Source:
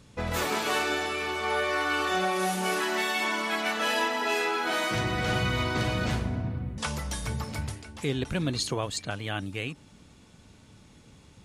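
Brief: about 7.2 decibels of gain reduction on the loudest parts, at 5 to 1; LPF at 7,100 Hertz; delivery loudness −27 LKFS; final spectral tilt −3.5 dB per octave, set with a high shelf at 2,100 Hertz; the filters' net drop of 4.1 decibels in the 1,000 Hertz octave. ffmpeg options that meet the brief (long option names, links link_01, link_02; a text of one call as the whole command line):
ffmpeg -i in.wav -af "lowpass=7100,equalizer=frequency=1000:width_type=o:gain=-7,highshelf=frequency=2100:gain=6,acompressor=threshold=-31dB:ratio=5,volume=6.5dB" out.wav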